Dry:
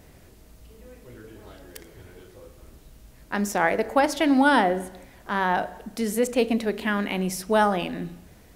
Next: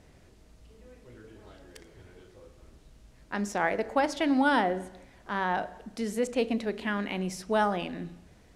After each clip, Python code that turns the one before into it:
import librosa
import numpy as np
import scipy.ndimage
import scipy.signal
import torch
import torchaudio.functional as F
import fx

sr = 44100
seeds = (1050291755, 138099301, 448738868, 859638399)

y = scipy.signal.sosfilt(scipy.signal.butter(2, 7900.0, 'lowpass', fs=sr, output='sos'), x)
y = y * librosa.db_to_amplitude(-5.5)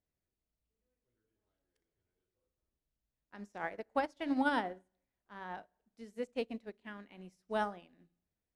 y = fx.upward_expand(x, sr, threshold_db=-41.0, expansion=2.5)
y = y * librosa.db_to_amplitude(-5.5)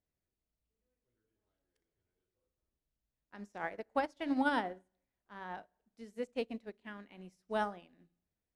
y = x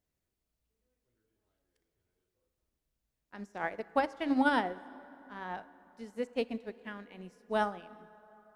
y = fx.rev_plate(x, sr, seeds[0], rt60_s=3.9, hf_ratio=0.5, predelay_ms=0, drr_db=17.5)
y = y * librosa.db_to_amplitude(4.0)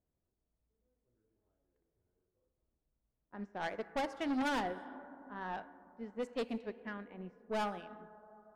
y = fx.env_lowpass(x, sr, base_hz=930.0, full_db=-30.5)
y = 10.0 ** (-32.0 / 20.0) * np.tanh(y / 10.0 ** (-32.0 / 20.0))
y = y * librosa.db_to_amplitude(1.0)